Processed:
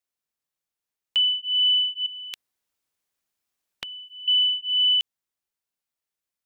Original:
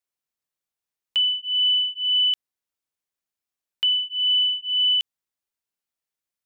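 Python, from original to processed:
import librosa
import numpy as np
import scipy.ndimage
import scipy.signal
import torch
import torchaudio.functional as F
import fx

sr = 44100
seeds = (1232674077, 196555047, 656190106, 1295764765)

y = fx.spectral_comp(x, sr, ratio=2.0, at=(2.06, 4.28))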